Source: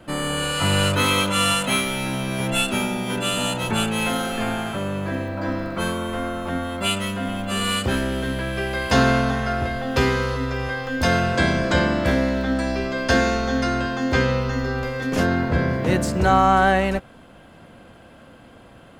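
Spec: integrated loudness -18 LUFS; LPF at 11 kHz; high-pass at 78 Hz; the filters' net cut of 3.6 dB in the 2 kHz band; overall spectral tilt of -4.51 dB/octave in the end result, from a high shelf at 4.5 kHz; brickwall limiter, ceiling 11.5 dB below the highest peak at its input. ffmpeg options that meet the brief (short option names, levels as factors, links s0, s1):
-af "highpass=78,lowpass=11000,equalizer=f=2000:t=o:g=-4,highshelf=f=4500:g=-5,volume=2.51,alimiter=limit=0.376:level=0:latency=1"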